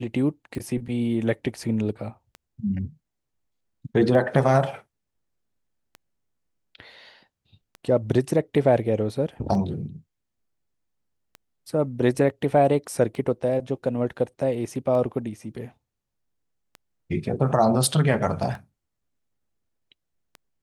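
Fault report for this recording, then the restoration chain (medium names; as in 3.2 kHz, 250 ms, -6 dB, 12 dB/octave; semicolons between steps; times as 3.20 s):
tick 33 1/3 rpm -24 dBFS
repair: de-click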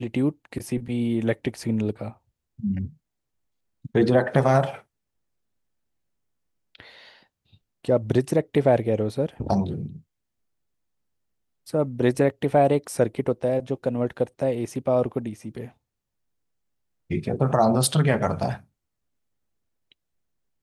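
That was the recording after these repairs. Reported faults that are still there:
nothing left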